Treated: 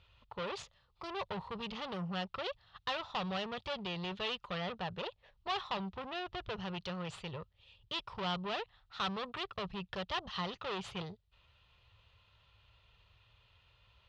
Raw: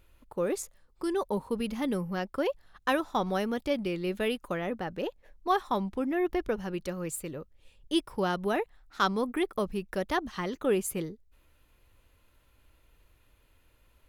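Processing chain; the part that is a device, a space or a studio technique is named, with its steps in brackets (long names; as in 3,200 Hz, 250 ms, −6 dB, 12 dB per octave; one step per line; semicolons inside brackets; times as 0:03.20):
scooped metal amplifier (tube saturation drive 35 dB, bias 0.6; loudspeaker in its box 85–3,700 Hz, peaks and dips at 110 Hz +8 dB, 180 Hz +5 dB, 390 Hz +4 dB, 1,600 Hz −9 dB, 2,200 Hz −9 dB; guitar amp tone stack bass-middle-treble 10-0-10)
level +14.5 dB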